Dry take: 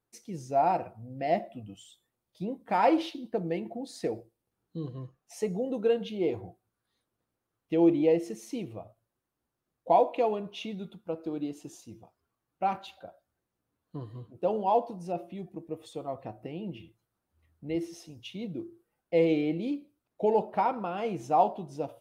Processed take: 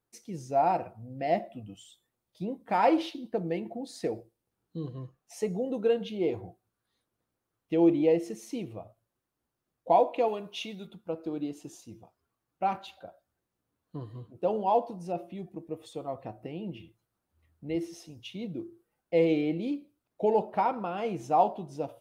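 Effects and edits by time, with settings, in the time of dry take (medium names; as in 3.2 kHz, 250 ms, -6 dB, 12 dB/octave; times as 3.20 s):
10.28–10.87 s: tilt EQ +2 dB/octave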